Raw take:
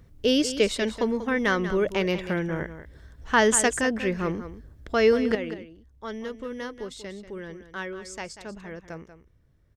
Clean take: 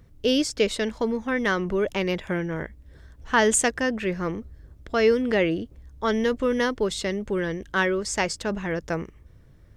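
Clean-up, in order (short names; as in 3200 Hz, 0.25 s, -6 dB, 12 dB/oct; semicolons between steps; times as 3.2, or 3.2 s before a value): inverse comb 0.189 s -12 dB; gain 0 dB, from 5.35 s +11.5 dB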